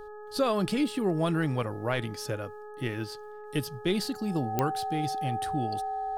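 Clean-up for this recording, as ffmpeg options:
-af "adeclick=t=4,bandreject=f=421.5:t=h:w=4,bandreject=f=843:t=h:w=4,bandreject=f=1264.5:t=h:w=4,bandreject=f=1686:t=h:w=4,bandreject=f=770:w=30"

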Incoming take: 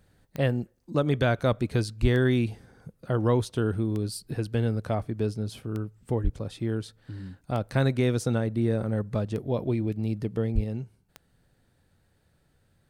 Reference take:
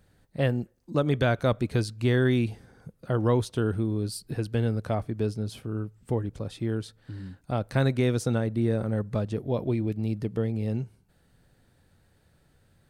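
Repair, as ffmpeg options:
-filter_complex "[0:a]adeclick=t=4,asplit=3[s0][s1][s2];[s0]afade=t=out:st=2.01:d=0.02[s3];[s1]highpass=f=140:w=0.5412,highpass=f=140:w=1.3066,afade=t=in:st=2.01:d=0.02,afade=t=out:st=2.13:d=0.02[s4];[s2]afade=t=in:st=2.13:d=0.02[s5];[s3][s4][s5]amix=inputs=3:normalize=0,asplit=3[s6][s7][s8];[s6]afade=t=out:st=6.23:d=0.02[s9];[s7]highpass=f=140:w=0.5412,highpass=f=140:w=1.3066,afade=t=in:st=6.23:d=0.02,afade=t=out:st=6.35:d=0.02[s10];[s8]afade=t=in:st=6.35:d=0.02[s11];[s9][s10][s11]amix=inputs=3:normalize=0,asplit=3[s12][s13][s14];[s12]afade=t=out:st=10.54:d=0.02[s15];[s13]highpass=f=140:w=0.5412,highpass=f=140:w=1.3066,afade=t=in:st=10.54:d=0.02,afade=t=out:st=10.66:d=0.02[s16];[s14]afade=t=in:st=10.66:d=0.02[s17];[s15][s16][s17]amix=inputs=3:normalize=0,asetnsamples=n=441:p=0,asendcmd='10.64 volume volume 3.5dB',volume=1"

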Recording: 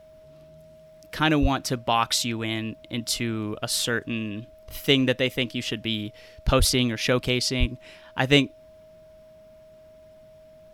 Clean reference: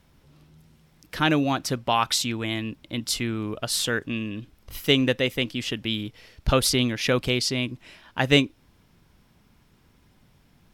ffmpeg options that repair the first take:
-filter_complex "[0:a]bandreject=f=630:w=30,asplit=3[s0][s1][s2];[s0]afade=t=out:st=1.41:d=0.02[s3];[s1]highpass=f=140:w=0.5412,highpass=f=140:w=1.3066,afade=t=in:st=1.41:d=0.02,afade=t=out:st=1.53:d=0.02[s4];[s2]afade=t=in:st=1.53:d=0.02[s5];[s3][s4][s5]amix=inputs=3:normalize=0,asplit=3[s6][s7][s8];[s6]afade=t=out:st=6.58:d=0.02[s9];[s7]highpass=f=140:w=0.5412,highpass=f=140:w=1.3066,afade=t=in:st=6.58:d=0.02,afade=t=out:st=6.7:d=0.02[s10];[s8]afade=t=in:st=6.7:d=0.02[s11];[s9][s10][s11]amix=inputs=3:normalize=0,asplit=3[s12][s13][s14];[s12]afade=t=out:st=7.59:d=0.02[s15];[s13]highpass=f=140:w=0.5412,highpass=f=140:w=1.3066,afade=t=in:st=7.59:d=0.02,afade=t=out:st=7.71:d=0.02[s16];[s14]afade=t=in:st=7.71:d=0.02[s17];[s15][s16][s17]amix=inputs=3:normalize=0"

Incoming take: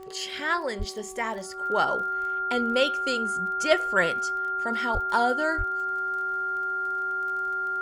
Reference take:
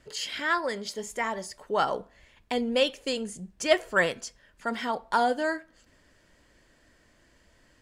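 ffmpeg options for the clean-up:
-filter_complex "[0:a]adeclick=t=4,bandreject=f=379.2:t=h:w=4,bandreject=f=758.4:t=h:w=4,bandreject=f=1137.6:t=h:w=4,bandreject=f=1400:w=30,asplit=3[s0][s1][s2];[s0]afade=t=out:st=0.78:d=0.02[s3];[s1]highpass=f=140:w=0.5412,highpass=f=140:w=1.3066,afade=t=in:st=0.78:d=0.02,afade=t=out:st=0.9:d=0.02[s4];[s2]afade=t=in:st=0.9:d=0.02[s5];[s3][s4][s5]amix=inputs=3:normalize=0,asplit=3[s6][s7][s8];[s6]afade=t=out:st=4.93:d=0.02[s9];[s7]highpass=f=140:w=0.5412,highpass=f=140:w=1.3066,afade=t=in:st=4.93:d=0.02,afade=t=out:st=5.05:d=0.02[s10];[s8]afade=t=in:st=5.05:d=0.02[s11];[s9][s10][s11]amix=inputs=3:normalize=0,asplit=3[s12][s13][s14];[s12]afade=t=out:st=5.57:d=0.02[s15];[s13]highpass=f=140:w=0.5412,highpass=f=140:w=1.3066,afade=t=in:st=5.57:d=0.02,afade=t=out:st=5.69:d=0.02[s16];[s14]afade=t=in:st=5.69:d=0.02[s17];[s15][s16][s17]amix=inputs=3:normalize=0"

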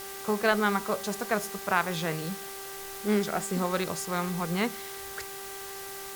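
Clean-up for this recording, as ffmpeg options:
-af "adeclick=t=4,bandreject=f=392:t=h:w=4,bandreject=f=784:t=h:w=4,bandreject=f=1176:t=h:w=4,bandreject=f=1568:t=h:w=4,bandreject=f=1960:t=h:w=4,afwtdn=0.0079"

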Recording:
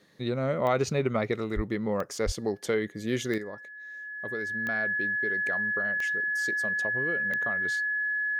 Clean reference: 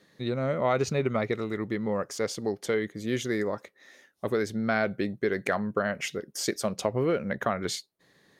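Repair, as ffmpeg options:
-filter_complex "[0:a]adeclick=t=4,bandreject=f=1700:w=30,asplit=3[s0][s1][s2];[s0]afade=t=out:st=1.55:d=0.02[s3];[s1]highpass=f=140:w=0.5412,highpass=f=140:w=1.3066,afade=t=in:st=1.55:d=0.02,afade=t=out:st=1.67:d=0.02[s4];[s2]afade=t=in:st=1.67:d=0.02[s5];[s3][s4][s5]amix=inputs=3:normalize=0,asplit=3[s6][s7][s8];[s6]afade=t=out:st=2.25:d=0.02[s9];[s7]highpass=f=140:w=0.5412,highpass=f=140:w=1.3066,afade=t=in:st=2.25:d=0.02,afade=t=out:st=2.37:d=0.02[s10];[s8]afade=t=in:st=2.37:d=0.02[s11];[s9][s10][s11]amix=inputs=3:normalize=0,asetnsamples=n=441:p=0,asendcmd='3.38 volume volume 9.5dB',volume=1"

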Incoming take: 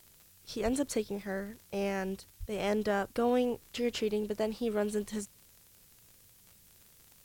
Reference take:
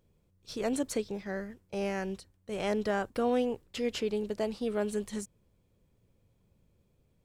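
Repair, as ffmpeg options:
-filter_complex "[0:a]adeclick=t=4,asplit=3[s0][s1][s2];[s0]afade=t=out:st=0.64:d=0.02[s3];[s1]highpass=f=140:w=0.5412,highpass=f=140:w=1.3066,afade=t=in:st=0.64:d=0.02,afade=t=out:st=0.76:d=0.02[s4];[s2]afade=t=in:st=0.76:d=0.02[s5];[s3][s4][s5]amix=inputs=3:normalize=0,asplit=3[s6][s7][s8];[s6]afade=t=out:st=2.39:d=0.02[s9];[s7]highpass=f=140:w=0.5412,highpass=f=140:w=1.3066,afade=t=in:st=2.39:d=0.02,afade=t=out:st=2.51:d=0.02[s10];[s8]afade=t=in:st=2.51:d=0.02[s11];[s9][s10][s11]amix=inputs=3:normalize=0,afftdn=nr=9:nf=-61"

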